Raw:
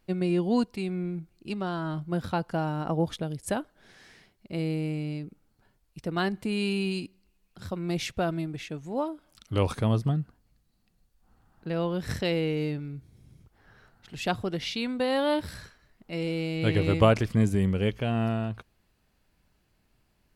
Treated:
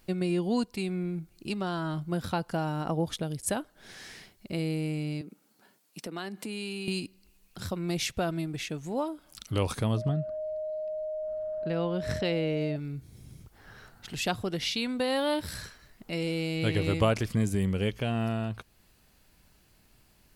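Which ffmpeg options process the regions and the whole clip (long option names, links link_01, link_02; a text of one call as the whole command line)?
ffmpeg -i in.wav -filter_complex "[0:a]asettb=1/sr,asplit=3[link_01][link_02][link_03];[link_01]atrim=end=5.214[link_04];[link_02]atrim=start=5.21:end=6.88,asetpts=PTS-STARTPTS,afade=type=in:duration=0.004:curve=qsin,afade=type=out:start_time=1.666:duration=0.004:curve=qsin,highpass=frequency=190:width=0.5412,highpass=frequency=190:width=1.3066,acompressor=threshold=-43dB:ratio=2:attack=3.2:release=140:knee=1:detection=peak[link_05];[link_03]atrim=start=6.876[link_06];[link_04][link_05]acrossfade=duration=0.004:curve1=hsin:curve2=qsin[link_07];[link_07][link_06]acrossfade=duration=0.004:curve1=qsin:curve2=hsin,asettb=1/sr,asplit=3[link_08][link_09][link_10];[link_08]atrim=end=9.974[link_11];[link_09]atrim=start=9.97:end=12.76,asetpts=PTS-STARTPTS,afade=type=in:duration=0.004:curve=qsin,afade=type=out:start_time=2.786:duration=0.004:curve=qsin,aemphasis=mode=reproduction:type=50fm,aeval=exprs='val(0)+0.0224*sin(2*PI*620*n/s)':channel_layout=same[link_12];[link_10]atrim=start=12.756[link_13];[link_11][link_12]acrossfade=duration=0.004:curve1=hsin:curve2=qsin[link_14];[link_14][link_13]acrossfade=duration=0.004:curve1=qsin:curve2=hsin,highshelf=frequency=4200:gain=8.5,acompressor=threshold=-45dB:ratio=1.5,volume=5.5dB" out.wav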